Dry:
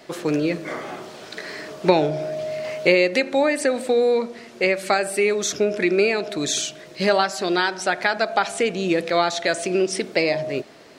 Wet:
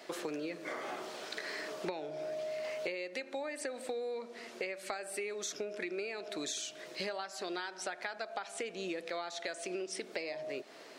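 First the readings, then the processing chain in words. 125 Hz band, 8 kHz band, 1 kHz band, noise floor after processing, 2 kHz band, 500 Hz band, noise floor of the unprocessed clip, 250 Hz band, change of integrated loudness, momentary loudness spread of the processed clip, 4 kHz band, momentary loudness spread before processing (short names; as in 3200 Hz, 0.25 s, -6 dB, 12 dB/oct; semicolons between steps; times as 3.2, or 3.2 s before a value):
-24.5 dB, -14.0 dB, -19.0 dB, -52 dBFS, -17.5 dB, -18.5 dB, -44 dBFS, -20.0 dB, -18.5 dB, 3 LU, -15.5 dB, 11 LU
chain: Bessel high-pass 360 Hz, order 2; compressor 10:1, threshold -32 dBFS, peak gain reduction 20 dB; gain -4 dB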